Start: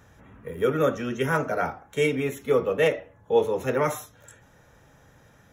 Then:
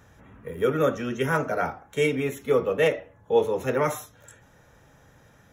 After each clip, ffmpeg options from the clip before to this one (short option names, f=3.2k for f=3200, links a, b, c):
-af anull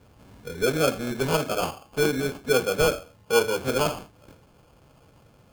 -af "acrusher=samples=23:mix=1:aa=0.000001"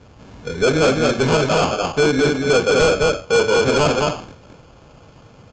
-af "aecho=1:1:215:0.631,aresample=16000,asoftclip=type=hard:threshold=-20dB,aresample=44100,volume=9dB"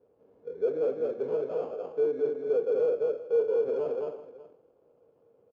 -af "bandpass=f=460:t=q:w=5:csg=0,aecho=1:1:375:0.158,volume=-8dB"